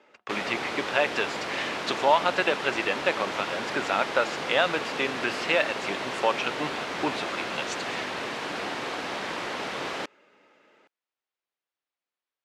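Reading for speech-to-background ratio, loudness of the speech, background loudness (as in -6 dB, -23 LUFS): 3.5 dB, -28.5 LUFS, -32.0 LUFS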